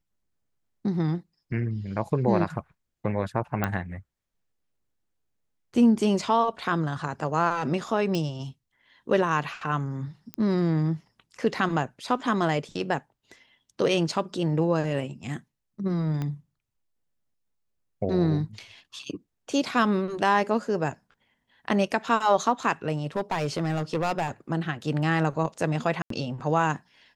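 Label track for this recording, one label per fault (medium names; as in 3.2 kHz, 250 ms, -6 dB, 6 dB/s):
3.640000	3.640000	pop -12 dBFS
8.150000	8.150000	pop -16 dBFS
10.340000	10.340000	pop -18 dBFS
16.220000	16.220000	pop -19 dBFS
23.040000	24.290000	clipped -21 dBFS
26.020000	26.100000	dropout 83 ms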